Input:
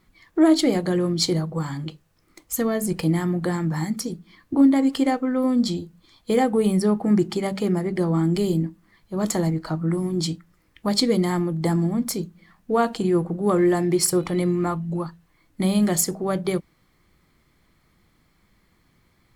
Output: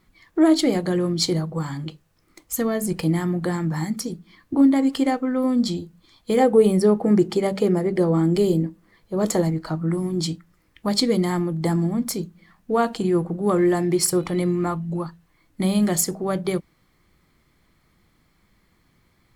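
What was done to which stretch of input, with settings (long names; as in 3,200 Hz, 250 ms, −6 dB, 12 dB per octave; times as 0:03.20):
0:06.39–0:09.42: parametric band 480 Hz +8 dB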